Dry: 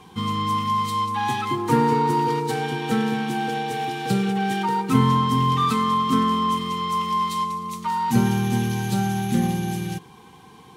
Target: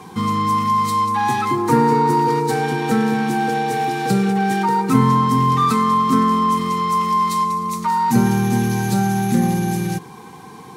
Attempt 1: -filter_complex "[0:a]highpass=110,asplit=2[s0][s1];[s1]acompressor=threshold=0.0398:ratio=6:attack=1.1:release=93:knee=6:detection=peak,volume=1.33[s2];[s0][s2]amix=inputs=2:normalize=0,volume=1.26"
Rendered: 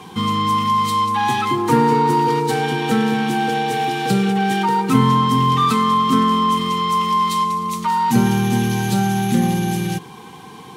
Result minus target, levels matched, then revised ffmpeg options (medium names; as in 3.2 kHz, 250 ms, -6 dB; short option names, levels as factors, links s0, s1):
4 kHz band +6.5 dB
-filter_complex "[0:a]highpass=110,equalizer=f=3100:w=2.7:g=-9.5,asplit=2[s0][s1];[s1]acompressor=threshold=0.0398:ratio=6:attack=1.1:release=93:knee=6:detection=peak,volume=1.33[s2];[s0][s2]amix=inputs=2:normalize=0,volume=1.26"